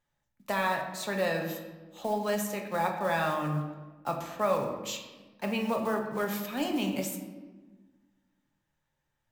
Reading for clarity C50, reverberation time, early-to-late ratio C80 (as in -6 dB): 6.0 dB, 1.3 s, 8.0 dB